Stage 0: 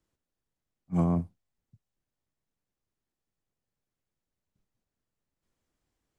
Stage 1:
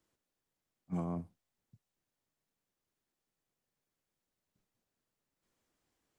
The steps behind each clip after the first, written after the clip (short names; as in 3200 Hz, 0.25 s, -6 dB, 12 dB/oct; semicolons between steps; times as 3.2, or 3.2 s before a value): low shelf 120 Hz -11.5 dB; compressor 12:1, threshold -35 dBFS, peak gain reduction 12 dB; gain +2 dB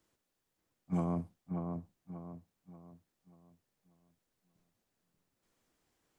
dark delay 0.586 s, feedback 38%, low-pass 1700 Hz, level -5 dB; gain +3.5 dB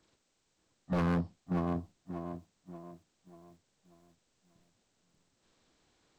nonlinear frequency compression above 1200 Hz 1.5:1; wavefolder -31 dBFS; lo-fi delay 0.589 s, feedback 35%, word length 12-bit, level -12.5 dB; gain +7 dB